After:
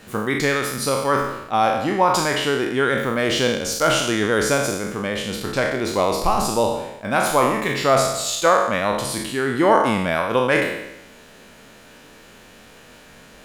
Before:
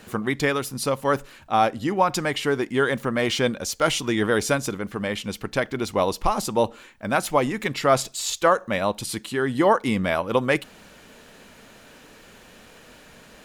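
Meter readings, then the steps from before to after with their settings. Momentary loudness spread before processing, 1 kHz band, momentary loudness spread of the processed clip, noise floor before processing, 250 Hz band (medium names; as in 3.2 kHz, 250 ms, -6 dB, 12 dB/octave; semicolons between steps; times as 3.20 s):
6 LU, +4.0 dB, 7 LU, -49 dBFS, +2.0 dB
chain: spectral sustain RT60 0.93 s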